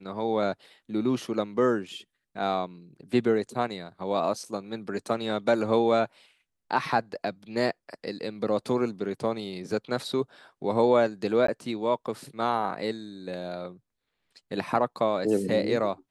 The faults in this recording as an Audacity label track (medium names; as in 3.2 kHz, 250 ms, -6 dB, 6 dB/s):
11.470000	11.480000	dropout 14 ms